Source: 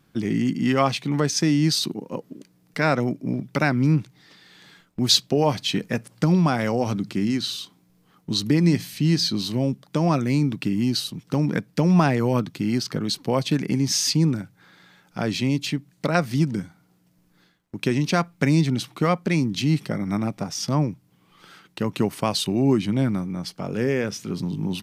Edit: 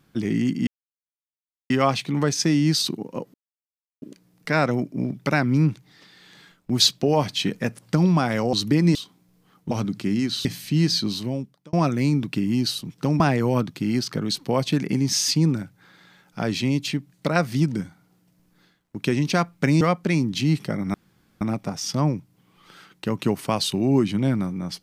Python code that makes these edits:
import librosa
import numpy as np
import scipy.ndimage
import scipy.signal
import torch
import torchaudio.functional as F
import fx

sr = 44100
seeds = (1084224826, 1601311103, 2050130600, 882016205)

y = fx.edit(x, sr, fx.insert_silence(at_s=0.67, length_s=1.03),
    fx.insert_silence(at_s=2.31, length_s=0.68),
    fx.swap(start_s=6.82, length_s=0.74, other_s=8.32, other_length_s=0.42),
    fx.fade_out_span(start_s=9.35, length_s=0.67),
    fx.cut(start_s=11.49, length_s=0.5),
    fx.cut(start_s=18.6, length_s=0.42),
    fx.insert_room_tone(at_s=20.15, length_s=0.47), tone=tone)